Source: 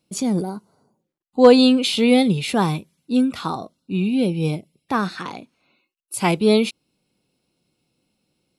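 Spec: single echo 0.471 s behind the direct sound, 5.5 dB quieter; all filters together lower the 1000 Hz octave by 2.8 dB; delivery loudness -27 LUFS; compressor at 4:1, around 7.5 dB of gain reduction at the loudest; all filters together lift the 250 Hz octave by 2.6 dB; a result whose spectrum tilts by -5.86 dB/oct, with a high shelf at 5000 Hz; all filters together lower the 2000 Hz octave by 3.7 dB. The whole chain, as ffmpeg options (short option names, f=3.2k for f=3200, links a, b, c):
-af "equalizer=f=250:t=o:g=3,equalizer=f=1k:t=o:g=-3,equalizer=f=2k:t=o:g=-3.5,highshelf=f=5k:g=-3.5,acompressor=threshold=-14dB:ratio=4,aecho=1:1:471:0.531,volume=-6dB"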